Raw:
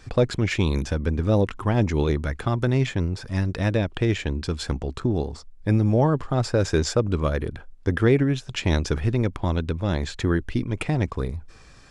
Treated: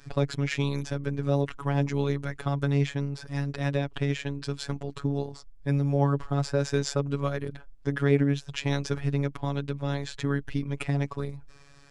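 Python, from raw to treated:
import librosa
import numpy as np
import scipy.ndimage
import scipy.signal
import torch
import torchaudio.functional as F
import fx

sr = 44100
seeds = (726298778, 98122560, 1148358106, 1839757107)

y = fx.robotise(x, sr, hz=141.0)
y = y * librosa.db_to_amplitude(-2.5)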